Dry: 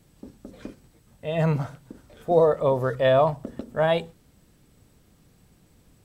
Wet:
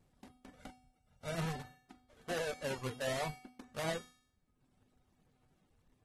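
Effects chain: half-waves squared off; 2.42–3.61 gate -28 dBFS, range -9 dB; notches 60/120/180/240/300 Hz; reverb removal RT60 0.89 s; 0.55–1.35 comb 1.4 ms, depth 67%; limiter -14.5 dBFS, peak gain reduction 7 dB; flange 1.2 Hz, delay 0.1 ms, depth 8.9 ms, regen +73%; resonator 250 Hz, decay 0.64 s, harmonics odd, mix 80%; AAC 32 kbps 48000 Hz

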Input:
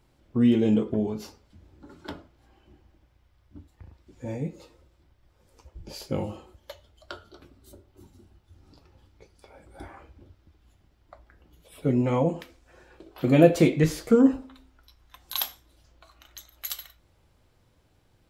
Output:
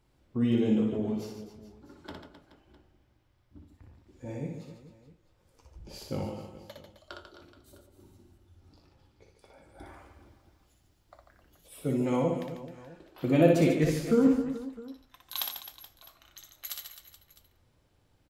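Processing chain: 9.87–12.17 tone controls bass -1 dB, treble +9 dB; reverse bouncing-ball echo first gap 60 ms, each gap 1.4×, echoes 5; gain -6 dB

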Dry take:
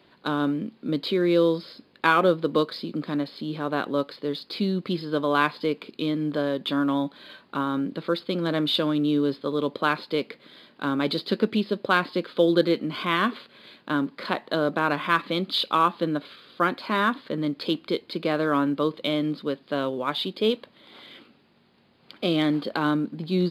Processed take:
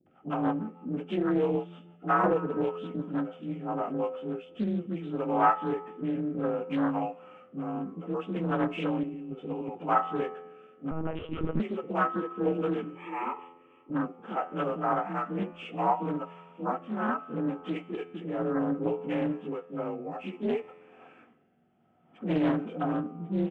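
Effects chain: inharmonic rescaling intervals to 88%; tilt shelf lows +7 dB, about 1400 Hz; 9.03–9.69 negative-ratio compressor -25 dBFS, ratio -1; 12.84–13.9 fixed phaser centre 1000 Hz, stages 8; resonator 86 Hz, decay 1.8 s, harmonics all, mix 60%; small resonant body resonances 740/1300 Hz, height 16 dB, ringing for 45 ms; rotary speaker horn 6.3 Hz, later 0.65 Hz, at 3.26; bands offset in time lows, highs 60 ms, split 390 Hz; 10.91–11.6 monotone LPC vocoder at 8 kHz 160 Hz; Doppler distortion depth 0.39 ms

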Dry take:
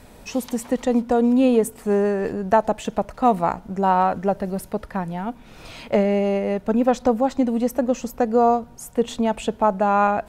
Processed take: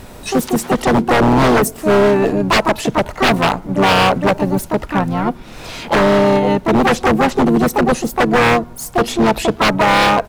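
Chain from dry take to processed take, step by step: harmoniser -7 st -10 dB, -5 st -15 dB, +7 st -5 dB; wavefolder -15 dBFS; gain +8.5 dB

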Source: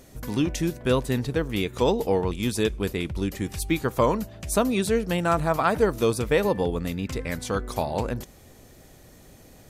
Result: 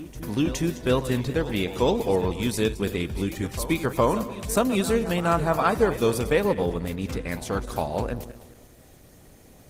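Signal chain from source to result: regenerating reverse delay 0.111 s, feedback 55%, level -13 dB; reverse echo 0.414 s -15.5 dB; Opus 20 kbps 48000 Hz

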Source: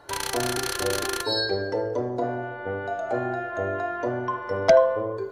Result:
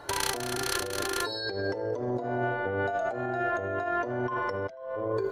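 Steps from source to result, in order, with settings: negative-ratio compressor -32 dBFS, ratio -1

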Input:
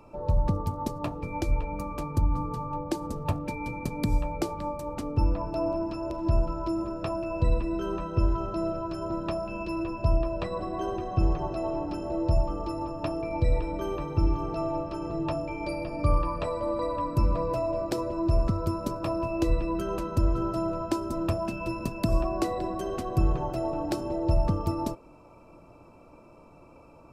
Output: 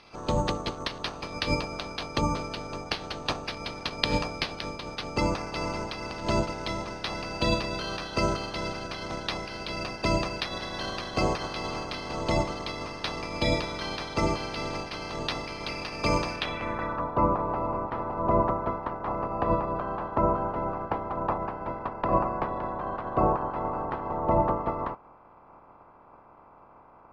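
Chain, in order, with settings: spectral limiter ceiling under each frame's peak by 27 dB; careless resampling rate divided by 6×, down none, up hold; low-pass sweep 4400 Hz -> 1000 Hz, 16.31–17.07; gain -3 dB

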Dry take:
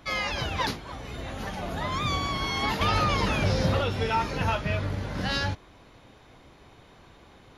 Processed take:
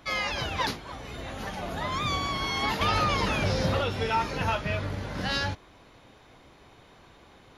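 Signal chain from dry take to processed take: low shelf 250 Hz -3.5 dB

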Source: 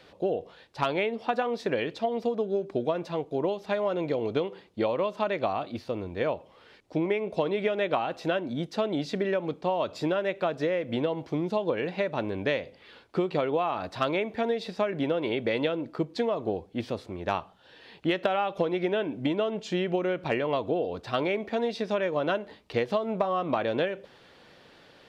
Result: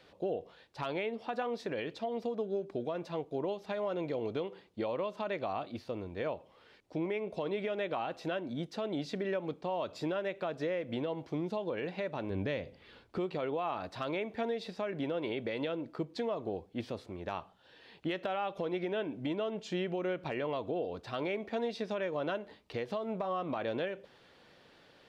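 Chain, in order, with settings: 12.3–13.18 low shelf 230 Hz +10.5 dB; limiter -19 dBFS, peak gain reduction 6.5 dB; gain -6 dB

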